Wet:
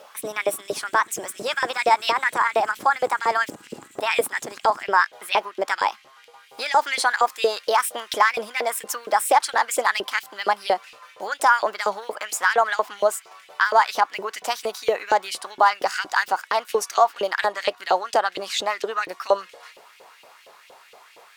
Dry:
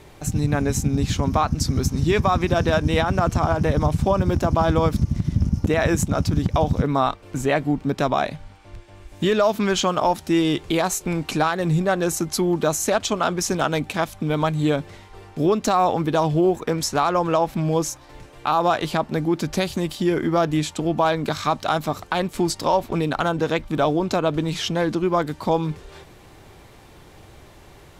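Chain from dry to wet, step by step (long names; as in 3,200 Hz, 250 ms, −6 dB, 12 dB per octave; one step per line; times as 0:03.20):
gliding playback speed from 144% → 118%
auto-filter high-pass saw up 4.3 Hz 470–3,000 Hz
level −1.5 dB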